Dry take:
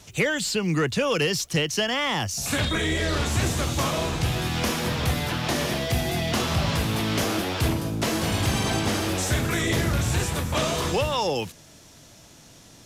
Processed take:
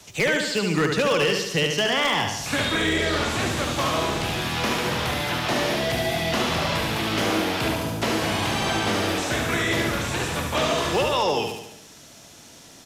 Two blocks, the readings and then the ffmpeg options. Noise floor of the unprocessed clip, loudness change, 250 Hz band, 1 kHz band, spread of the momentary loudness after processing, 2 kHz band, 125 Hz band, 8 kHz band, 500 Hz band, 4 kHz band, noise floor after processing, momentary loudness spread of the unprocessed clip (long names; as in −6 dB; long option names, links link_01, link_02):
−50 dBFS, +1.5 dB, +0.5 dB, +4.0 dB, 4 LU, +3.5 dB, −4.0 dB, −1.5 dB, +3.0 dB, +2.5 dB, −47 dBFS, 2 LU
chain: -filter_complex "[0:a]lowshelf=frequency=160:gain=-9.5,aecho=1:1:72|144|216|288|360|432|504:0.562|0.309|0.17|0.0936|0.0515|0.0283|0.0156,acrossover=split=140|430|3000[link_01][link_02][link_03][link_04];[link_01]alimiter=level_in=8.5dB:limit=-24dB:level=0:latency=1:release=166,volume=-8.5dB[link_05];[link_05][link_02][link_03][link_04]amix=inputs=4:normalize=0,acrossover=split=4500[link_06][link_07];[link_07]acompressor=threshold=-39dB:ratio=4:attack=1:release=60[link_08];[link_06][link_08]amix=inputs=2:normalize=0,aeval=exprs='0.15*(abs(mod(val(0)/0.15+3,4)-2)-1)':channel_layout=same,volume=2.5dB"